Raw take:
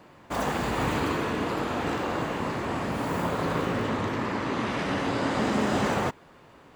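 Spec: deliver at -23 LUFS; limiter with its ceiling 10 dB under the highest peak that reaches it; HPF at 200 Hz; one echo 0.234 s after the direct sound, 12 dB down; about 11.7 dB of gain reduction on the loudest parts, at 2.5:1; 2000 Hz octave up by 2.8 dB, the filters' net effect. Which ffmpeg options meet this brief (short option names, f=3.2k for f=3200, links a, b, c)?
-af "highpass=200,equalizer=f=2k:t=o:g=3.5,acompressor=threshold=-41dB:ratio=2.5,alimiter=level_in=11.5dB:limit=-24dB:level=0:latency=1,volume=-11.5dB,aecho=1:1:234:0.251,volume=21dB"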